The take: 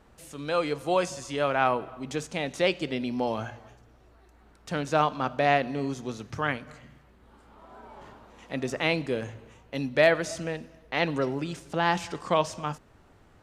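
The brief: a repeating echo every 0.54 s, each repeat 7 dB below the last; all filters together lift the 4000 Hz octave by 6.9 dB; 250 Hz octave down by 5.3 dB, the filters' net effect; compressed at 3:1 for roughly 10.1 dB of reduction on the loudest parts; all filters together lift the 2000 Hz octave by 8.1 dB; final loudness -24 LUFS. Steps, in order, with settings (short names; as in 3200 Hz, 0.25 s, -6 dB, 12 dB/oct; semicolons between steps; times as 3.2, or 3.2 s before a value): bell 250 Hz -7.5 dB; bell 2000 Hz +8.5 dB; bell 4000 Hz +5.5 dB; compressor 3:1, threshold -25 dBFS; feedback echo 0.54 s, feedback 45%, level -7 dB; gain +6 dB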